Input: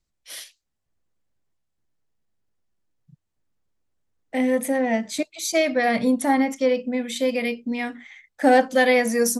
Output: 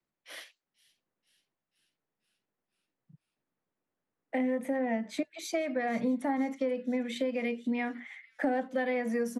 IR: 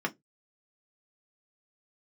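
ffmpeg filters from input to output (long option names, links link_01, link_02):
-filter_complex "[0:a]acrossover=split=150 2700:gain=0.0891 1 0.158[link_01][link_02][link_03];[link_01][link_02][link_03]amix=inputs=3:normalize=0,acrossover=split=160[link_04][link_05];[link_05]acompressor=threshold=-29dB:ratio=8[link_06];[link_04][link_06]amix=inputs=2:normalize=0,acrossover=split=100|820|2600[link_07][link_08][link_09][link_10];[link_10]asplit=7[link_11][link_12][link_13][link_14][link_15][link_16][link_17];[link_12]adelay=485,afreqshift=-110,volume=-18dB[link_18];[link_13]adelay=970,afreqshift=-220,volume=-21.9dB[link_19];[link_14]adelay=1455,afreqshift=-330,volume=-25.8dB[link_20];[link_15]adelay=1940,afreqshift=-440,volume=-29.6dB[link_21];[link_16]adelay=2425,afreqshift=-550,volume=-33.5dB[link_22];[link_17]adelay=2910,afreqshift=-660,volume=-37.4dB[link_23];[link_11][link_18][link_19][link_20][link_21][link_22][link_23]amix=inputs=7:normalize=0[link_24];[link_07][link_08][link_09][link_24]amix=inputs=4:normalize=0"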